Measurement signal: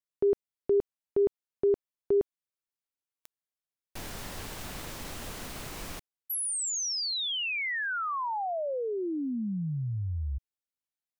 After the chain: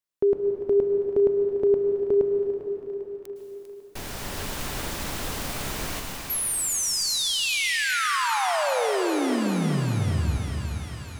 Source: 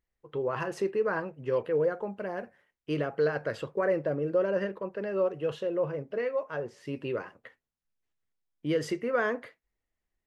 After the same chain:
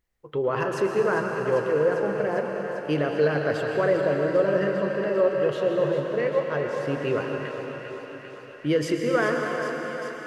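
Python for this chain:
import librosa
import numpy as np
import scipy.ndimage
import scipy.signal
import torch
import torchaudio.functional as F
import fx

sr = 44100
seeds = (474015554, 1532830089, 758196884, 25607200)

p1 = fx.rider(x, sr, range_db=4, speed_s=0.5)
p2 = x + F.gain(torch.from_numpy(p1), -3.0).numpy()
p3 = fx.echo_thinned(p2, sr, ms=398, feedback_pct=79, hz=590.0, wet_db=-9.5)
y = fx.rev_plate(p3, sr, seeds[0], rt60_s=4.2, hf_ratio=0.9, predelay_ms=100, drr_db=2.0)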